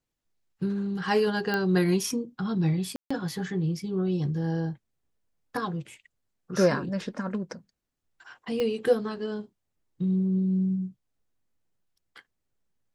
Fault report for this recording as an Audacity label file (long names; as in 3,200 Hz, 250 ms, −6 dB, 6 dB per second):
1.540000	1.540000	click −15 dBFS
2.960000	3.100000	drop-out 145 ms
8.600000	8.600000	click −17 dBFS